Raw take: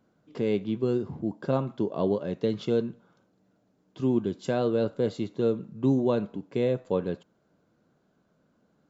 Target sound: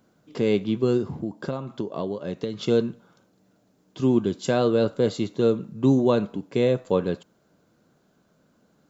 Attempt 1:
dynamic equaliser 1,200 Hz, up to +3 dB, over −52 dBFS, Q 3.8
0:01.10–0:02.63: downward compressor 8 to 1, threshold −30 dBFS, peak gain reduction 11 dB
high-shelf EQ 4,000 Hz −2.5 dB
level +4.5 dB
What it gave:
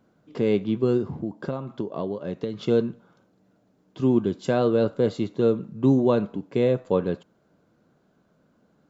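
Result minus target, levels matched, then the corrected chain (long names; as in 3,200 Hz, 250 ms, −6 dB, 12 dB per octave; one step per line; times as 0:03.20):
8,000 Hz band −8.0 dB
dynamic equaliser 1,200 Hz, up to +3 dB, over −52 dBFS, Q 3.8
0:01.10–0:02.63: downward compressor 8 to 1, threshold −30 dBFS, peak gain reduction 11 dB
high-shelf EQ 4,000 Hz +8.5 dB
level +4.5 dB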